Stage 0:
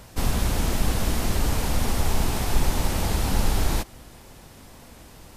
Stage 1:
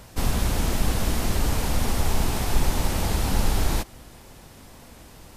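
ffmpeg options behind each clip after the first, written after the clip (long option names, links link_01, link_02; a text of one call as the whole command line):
ffmpeg -i in.wav -af anull out.wav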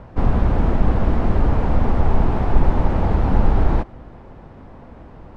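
ffmpeg -i in.wav -af "lowpass=1200,volume=7dB" out.wav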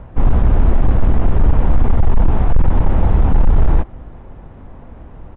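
ffmpeg -i in.wav -af "lowshelf=frequency=84:gain=9.5,aresample=8000,volume=5dB,asoftclip=hard,volume=-5dB,aresample=44100" out.wav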